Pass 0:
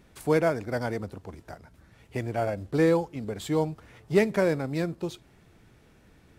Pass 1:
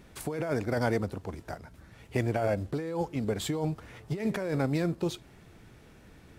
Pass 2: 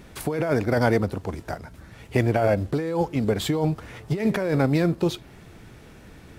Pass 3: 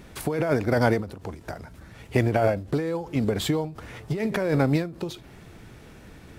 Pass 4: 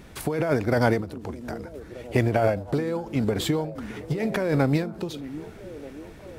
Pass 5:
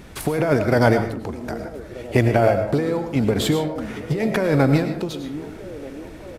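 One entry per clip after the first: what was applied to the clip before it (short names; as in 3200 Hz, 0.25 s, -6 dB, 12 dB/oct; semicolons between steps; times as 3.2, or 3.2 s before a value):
negative-ratio compressor -29 dBFS, ratio -1
dynamic EQ 7700 Hz, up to -5 dB, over -58 dBFS, Q 1.5; gain +7.5 dB
ending taper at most 120 dB/s
delay with a stepping band-pass 0.616 s, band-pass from 250 Hz, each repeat 0.7 oct, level -11 dB
on a send at -7.5 dB: reverb RT60 0.50 s, pre-delay 65 ms; on the sum: downsampling 32000 Hz; gain +4.5 dB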